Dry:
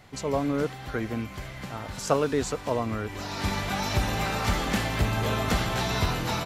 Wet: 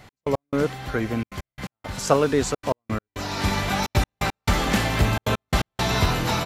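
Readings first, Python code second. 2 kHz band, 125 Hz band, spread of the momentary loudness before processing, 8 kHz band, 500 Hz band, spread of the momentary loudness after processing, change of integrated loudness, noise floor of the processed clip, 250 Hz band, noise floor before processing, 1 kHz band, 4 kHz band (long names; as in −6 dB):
+3.5 dB, +4.0 dB, 8 LU, +4.0 dB, +4.0 dB, 10 LU, +4.0 dB, below −85 dBFS, +3.5 dB, −41 dBFS, +3.5 dB, +3.5 dB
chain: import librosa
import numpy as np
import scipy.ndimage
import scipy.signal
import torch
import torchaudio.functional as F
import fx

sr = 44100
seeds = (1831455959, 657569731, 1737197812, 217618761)

y = fx.step_gate(x, sr, bpm=171, pattern='x..x..xxxxxxxx.', floor_db=-60.0, edge_ms=4.5)
y = F.gain(torch.from_numpy(y), 5.0).numpy()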